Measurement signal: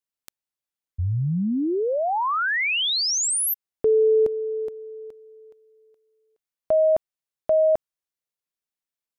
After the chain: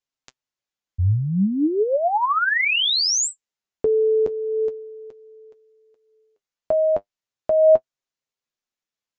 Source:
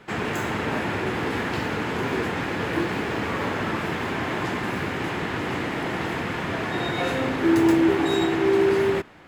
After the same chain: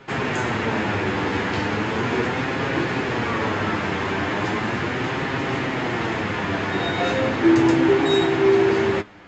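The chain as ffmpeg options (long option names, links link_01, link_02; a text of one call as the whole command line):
ffmpeg -i in.wav -af "flanger=delay=7.4:depth=2.9:regen=42:speed=0.37:shape=sinusoidal,aresample=16000,aresample=44100,volume=7dB" out.wav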